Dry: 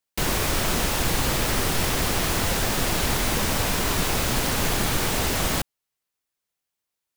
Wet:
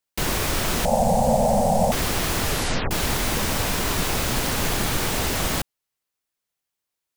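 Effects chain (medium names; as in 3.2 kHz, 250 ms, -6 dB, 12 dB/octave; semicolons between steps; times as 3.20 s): 0.85–1.92 s: FFT filter 120 Hz 0 dB, 230 Hz +13 dB, 320 Hz -27 dB, 530 Hz +14 dB, 790 Hz +15 dB, 1.2 kHz -15 dB, 3.4 kHz -14 dB, 8.2 kHz -2 dB, 14 kHz -10 dB; 2.43 s: tape stop 0.48 s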